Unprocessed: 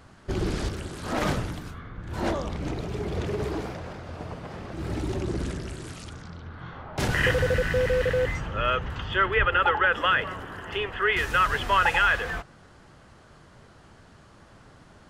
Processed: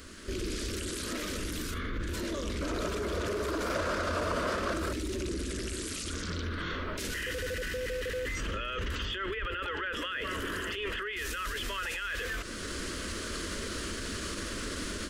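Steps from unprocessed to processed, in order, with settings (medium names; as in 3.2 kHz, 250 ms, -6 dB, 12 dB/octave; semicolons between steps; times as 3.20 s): rattle on loud lows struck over -24 dBFS, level -32 dBFS; treble shelf 3.9 kHz +9 dB; level rider gain up to 15 dB; static phaser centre 330 Hz, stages 4; peak limiter -33 dBFS, peak gain reduction 30.5 dB; 2.61–4.93 s: high-order bell 920 Hz +11.5 dB; trim +6 dB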